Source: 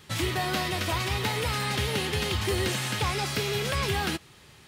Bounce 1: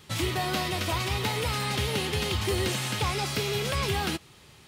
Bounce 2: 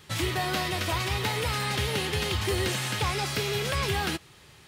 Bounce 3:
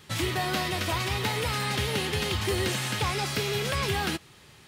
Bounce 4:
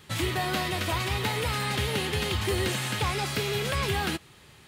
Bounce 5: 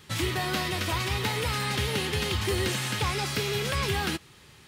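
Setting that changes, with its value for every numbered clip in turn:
bell, frequency: 1700, 230, 64, 5500, 670 Hz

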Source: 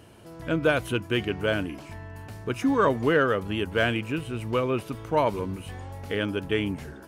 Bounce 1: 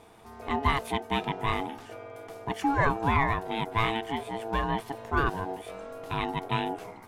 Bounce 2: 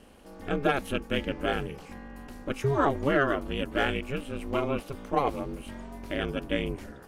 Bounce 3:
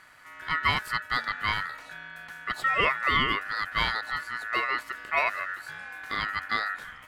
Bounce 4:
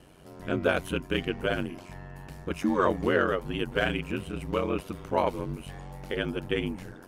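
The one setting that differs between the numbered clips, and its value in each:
ring modulator, frequency: 560, 140, 1600, 46 Hz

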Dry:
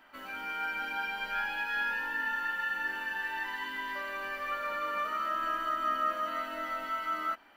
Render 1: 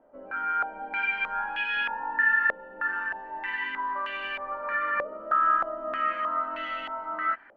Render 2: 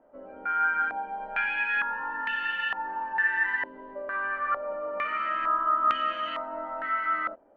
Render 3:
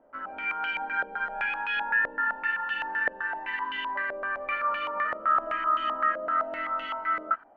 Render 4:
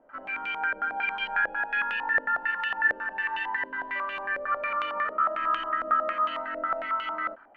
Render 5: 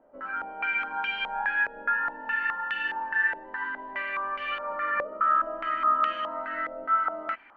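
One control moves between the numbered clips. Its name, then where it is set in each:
stepped low-pass, rate: 3.2, 2.2, 7.8, 11, 4.8 Hz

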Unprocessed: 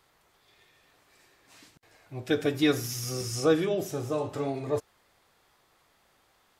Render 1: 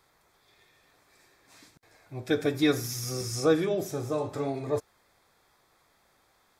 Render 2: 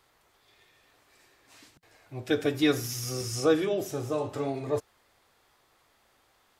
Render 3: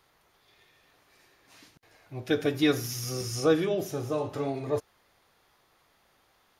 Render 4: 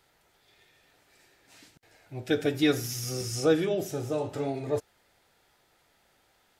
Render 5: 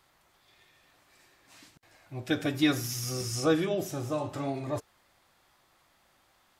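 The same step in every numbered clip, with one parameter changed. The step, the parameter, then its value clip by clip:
notch, frequency: 2900, 170, 7800, 1100, 440 Hz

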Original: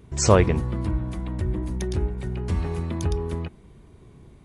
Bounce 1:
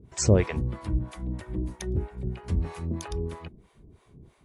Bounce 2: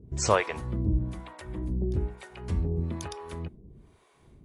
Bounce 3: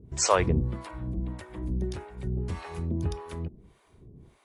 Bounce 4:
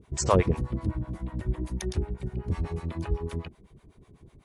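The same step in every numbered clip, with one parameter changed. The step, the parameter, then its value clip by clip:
harmonic tremolo, rate: 3.1, 1.1, 1.7, 8 Hz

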